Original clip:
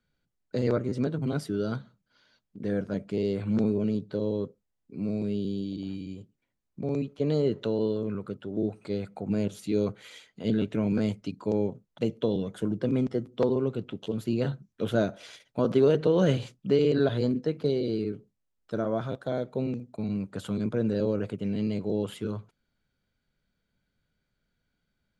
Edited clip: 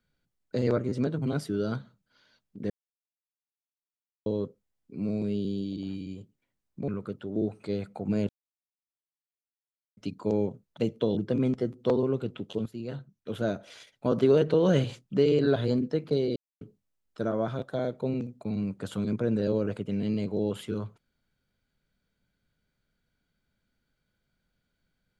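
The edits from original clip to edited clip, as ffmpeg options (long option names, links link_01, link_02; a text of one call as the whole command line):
ffmpeg -i in.wav -filter_complex "[0:a]asplit=10[link_01][link_02][link_03][link_04][link_05][link_06][link_07][link_08][link_09][link_10];[link_01]atrim=end=2.7,asetpts=PTS-STARTPTS,afade=type=out:start_time=2.696:duration=0.004:curve=hsin[link_11];[link_02]atrim=start=2.7:end=4.26,asetpts=PTS-STARTPTS,volume=0[link_12];[link_03]atrim=start=4.26:end=6.882,asetpts=PTS-STARTPTS,afade=type=in:duration=0.004:curve=hsin[link_13];[link_04]atrim=start=8.088:end=9.5,asetpts=PTS-STARTPTS,afade=type=out:start_time=1.408:duration=0.004:curve=hsin[link_14];[link_05]atrim=start=9.5:end=11.18,asetpts=PTS-STARTPTS,volume=0[link_15];[link_06]atrim=start=11.18:end=12.382,asetpts=PTS-STARTPTS,afade=type=in:duration=0.004:curve=hsin[link_16];[link_07]atrim=start=12.698:end=14.19,asetpts=PTS-STARTPTS,afade=type=out:start_time=1.488:duration=0.004:curve=hsin:silence=0.251189[link_17];[link_08]atrim=start=14.19:end=17.89,asetpts=PTS-STARTPTS,afade=type=in:duration=1.55:silence=0.251189,afade=type=out:start_time=3.696:duration=0.004:curve=hsin[link_18];[link_09]atrim=start=17.89:end=18.14,asetpts=PTS-STARTPTS,volume=0[link_19];[link_10]atrim=start=18.14,asetpts=PTS-STARTPTS,afade=type=in:duration=0.004:curve=hsin[link_20];[link_11][link_12][link_13]concat=n=3:v=0:a=1[link_21];[link_14][link_15][link_16]concat=n=3:v=0:a=1[link_22];[link_21][link_22]acrossfade=duration=0.004:curve1=hsin:curve2=hsin[link_23];[link_17][link_18][link_19][link_20]concat=n=4:v=0:a=1[link_24];[link_23][link_24]acrossfade=duration=0.004:curve1=hsin:curve2=hsin" out.wav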